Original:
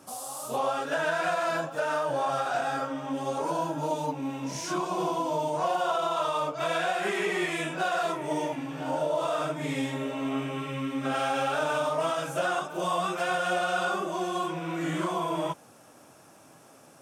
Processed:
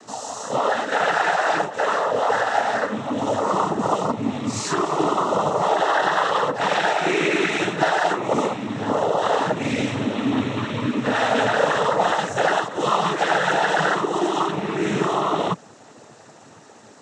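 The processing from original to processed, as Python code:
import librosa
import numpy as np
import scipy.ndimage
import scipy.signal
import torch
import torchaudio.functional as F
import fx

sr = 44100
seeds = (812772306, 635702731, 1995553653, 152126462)

y = fx.highpass(x, sr, hz=280.0, slope=6, at=(0.56, 2.9))
y = fx.noise_vocoder(y, sr, seeds[0], bands=12)
y = F.gain(torch.from_numpy(y), 8.5).numpy()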